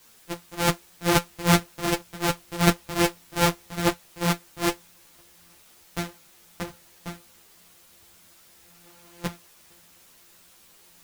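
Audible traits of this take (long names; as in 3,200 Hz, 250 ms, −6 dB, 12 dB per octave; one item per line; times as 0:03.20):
a buzz of ramps at a fixed pitch in blocks of 256 samples
tremolo saw up 0.54 Hz, depth 50%
a quantiser's noise floor 10 bits, dither triangular
a shimmering, thickened sound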